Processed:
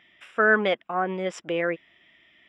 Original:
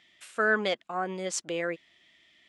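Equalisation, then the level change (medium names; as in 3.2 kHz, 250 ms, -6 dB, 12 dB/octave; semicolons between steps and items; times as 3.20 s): Savitzky-Golay filter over 25 samples; +5.5 dB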